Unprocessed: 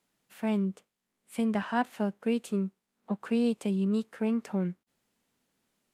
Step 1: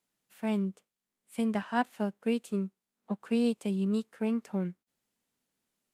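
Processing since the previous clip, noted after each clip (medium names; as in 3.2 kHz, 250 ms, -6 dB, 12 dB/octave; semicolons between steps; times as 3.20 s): treble shelf 4.6 kHz +5 dB; upward expansion 1.5:1, over -39 dBFS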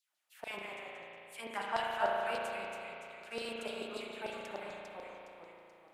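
ever faster or slower copies 134 ms, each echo -1 st, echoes 3, each echo -6 dB; LFO high-pass saw down 6.8 Hz 550–4700 Hz; spring tank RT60 2.9 s, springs 35 ms, chirp 45 ms, DRR -2 dB; trim -4 dB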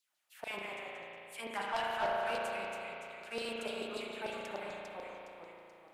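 saturation -29.5 dBFS, distortion -13 dB; trim +2 dB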